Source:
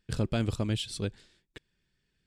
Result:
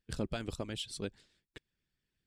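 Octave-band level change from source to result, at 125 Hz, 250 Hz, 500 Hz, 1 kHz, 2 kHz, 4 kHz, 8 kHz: -12.0, -8.0, -5.0, -5.0, -4.5, -4.5, -4.0 dB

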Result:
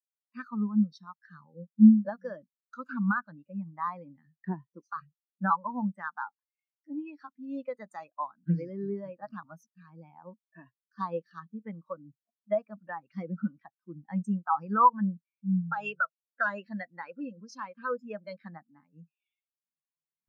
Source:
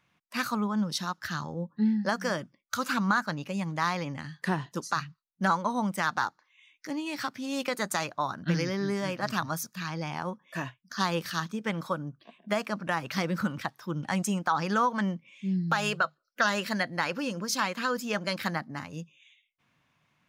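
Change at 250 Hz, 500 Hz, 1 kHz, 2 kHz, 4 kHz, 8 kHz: +2.0 dB, -4.5 dB, -1.5 dB, -7.0 dB, under -20 dB, under -25 dB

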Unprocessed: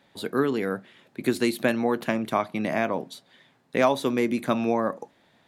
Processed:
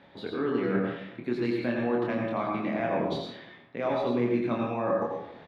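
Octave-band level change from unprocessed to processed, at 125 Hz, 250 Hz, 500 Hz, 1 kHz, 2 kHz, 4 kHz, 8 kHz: +0.5 dB, -2.5 dB, -2.5 dB, -4.0 dB, -5.5 dB, -6.5 dB, under -20 dB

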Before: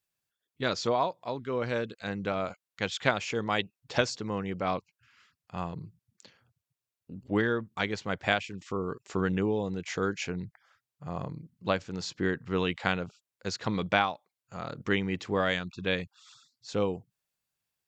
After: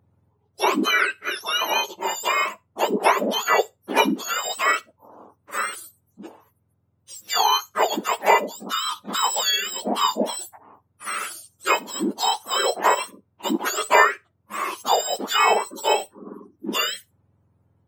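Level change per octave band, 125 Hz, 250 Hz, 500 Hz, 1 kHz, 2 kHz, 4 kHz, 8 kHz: n/a, +2.5 dB, +5.5 dB, +13.0 dB, +9.0 dB, +13.0 dB, +18.0 dB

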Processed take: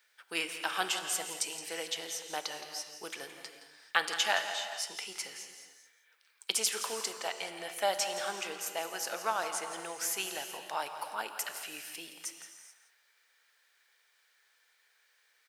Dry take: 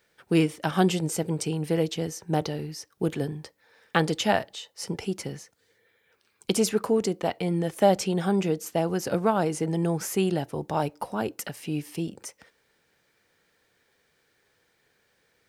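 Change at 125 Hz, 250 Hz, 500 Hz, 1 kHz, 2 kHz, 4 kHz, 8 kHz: -33.5, -24.0, -13.5, -6.0, 0.0, +1.0, +1.0 dB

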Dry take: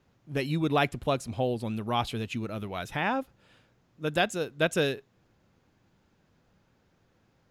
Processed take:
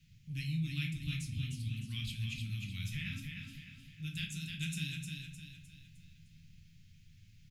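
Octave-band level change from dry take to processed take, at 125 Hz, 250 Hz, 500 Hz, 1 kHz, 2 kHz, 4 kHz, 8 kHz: -2.0 dB, -10.5 dB, under -40 dB, under -35 dB, -11.0 dB, -6.0 dB, -5.0 dB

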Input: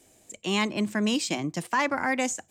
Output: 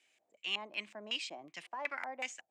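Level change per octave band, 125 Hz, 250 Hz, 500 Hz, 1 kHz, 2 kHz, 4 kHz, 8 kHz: -30.0, -27.5, -16.5, -14.5, -10.5, -6.5, -18.5 dB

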